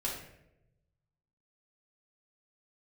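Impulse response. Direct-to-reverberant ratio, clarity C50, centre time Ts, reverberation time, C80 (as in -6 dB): -4.0 dB, 3.0 dB, 44 ms, 0.85 s, 6.5 dB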